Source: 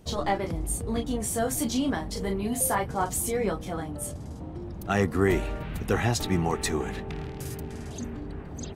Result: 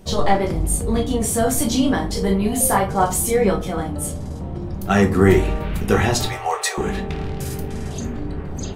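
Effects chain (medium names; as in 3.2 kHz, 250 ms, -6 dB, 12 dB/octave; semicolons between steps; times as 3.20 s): 6.25–6.78 s: steep high-pass 490 Hz 48 dB/octave; simulated room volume 160 m³, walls furnished, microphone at 1.1 m; trim +6.5 dB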